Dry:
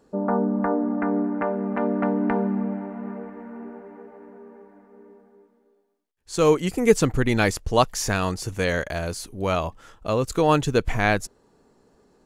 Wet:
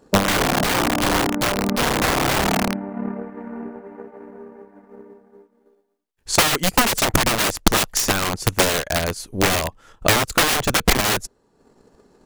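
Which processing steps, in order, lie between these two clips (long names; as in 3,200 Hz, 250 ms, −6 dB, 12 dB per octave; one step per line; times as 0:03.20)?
wrap-around overflow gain 19.5 dB
transient designer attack +10 dB, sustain −7 dB
level +4.5 dB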